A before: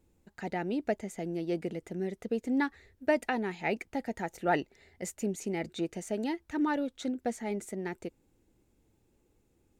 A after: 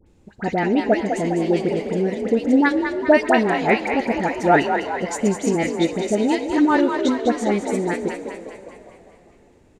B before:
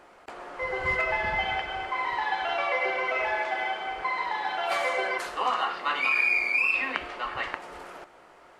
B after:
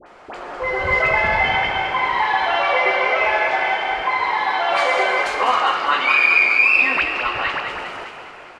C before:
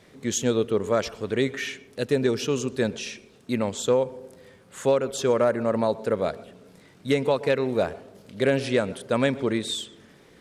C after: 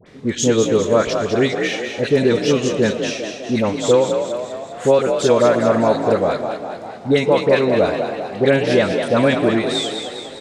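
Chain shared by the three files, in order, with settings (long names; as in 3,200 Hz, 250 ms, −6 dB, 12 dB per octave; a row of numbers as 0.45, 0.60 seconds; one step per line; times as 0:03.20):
low-pass filter 7,100 Hz 12 dB per octave
all-pass dispersion highs, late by 65 ms, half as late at 1,400 Hz
echo with shifted repeats 202 ms, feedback 56%, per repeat +49 Hz, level −7 dB
dense smooth reverb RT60 3.9 s, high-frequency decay 1×, DRR 15 dB
normalise the peak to −2 dBFS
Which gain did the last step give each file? +13.0, +8.5, +7.0 decibels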